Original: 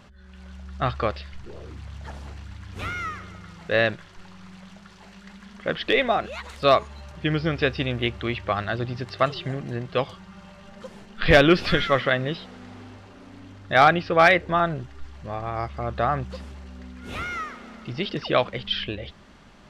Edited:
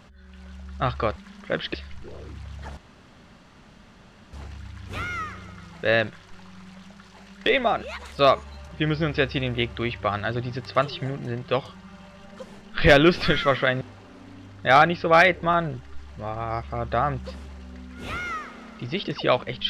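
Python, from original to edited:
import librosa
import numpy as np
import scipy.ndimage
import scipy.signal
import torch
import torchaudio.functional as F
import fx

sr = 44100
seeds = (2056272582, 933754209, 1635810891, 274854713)

y = fx.edit(x, sr, fx.insert_room_tone(at_s=2.19, length_s=1.56),
    fx.move(start_s=5.32, length_s=0.58, to_s=1.16),
    fx.cut(start_s=12.25, length_s=0.62), tone=tone)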